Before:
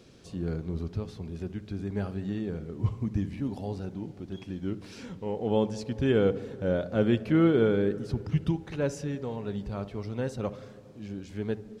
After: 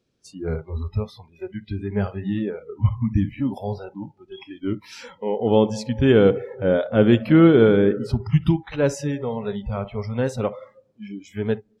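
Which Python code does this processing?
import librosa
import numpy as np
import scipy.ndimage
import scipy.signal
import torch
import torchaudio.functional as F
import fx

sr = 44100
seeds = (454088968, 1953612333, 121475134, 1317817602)

y = fx.noise_reduce_blind(x, sr, reduce_db=27)
y = y * 10.0 ** (9.0 / 20.0)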